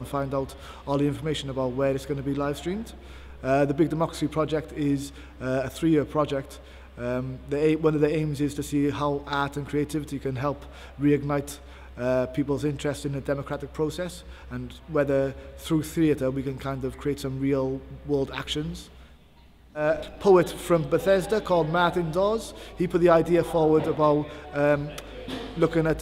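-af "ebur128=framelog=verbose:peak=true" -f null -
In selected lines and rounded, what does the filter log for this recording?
Integrated loudness:
  I:         -26.0 LUFS
  Threshold: -36.5 LUFS
Loudness range:
  LRA:         6.0 LU
  Threshold: -46.5 LUFS
  LRA low:   -29.2 LUFS
  LRA high:  -23.3 LUFS
True peak:
  Peak:       -6.8 dBFS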